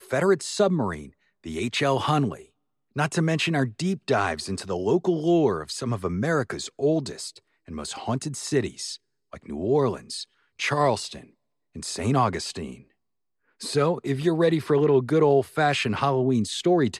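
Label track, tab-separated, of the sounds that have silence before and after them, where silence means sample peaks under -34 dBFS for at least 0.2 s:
1.460000	2.370000	sound
2.960000	7.300000	sound
7.680000	8.950000	sound
9.330000	10.230000	sound
10.600000	11.170000	sound
11.760000	12.730000	sound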